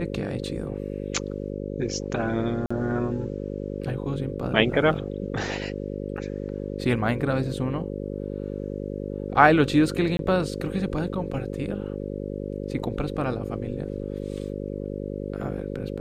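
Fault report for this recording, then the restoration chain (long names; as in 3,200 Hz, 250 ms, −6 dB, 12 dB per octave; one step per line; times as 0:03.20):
mains buzz 50 Hz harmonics 11 −32 dBFS
0:02.66–0:02.71: drop-out 45 ms
0:10.17–0:10.19: drop-out 22 ms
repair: hum removal 50 Hz, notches 11
repair the gap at 0:02.66, 45 ms
repair the gap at 0:10.17, 22 ms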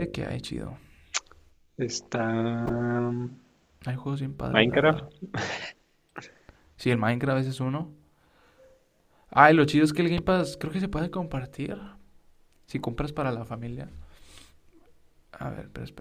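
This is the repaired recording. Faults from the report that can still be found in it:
none of them is left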